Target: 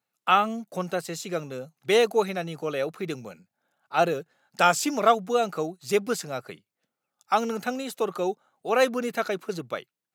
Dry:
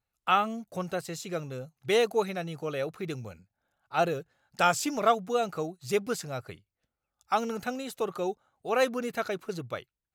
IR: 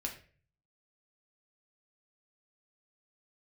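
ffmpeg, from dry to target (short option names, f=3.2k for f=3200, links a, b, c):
-af "highpass=f=160:w=0.5412,highpass=f=160:w=1.3066,volume=4dB"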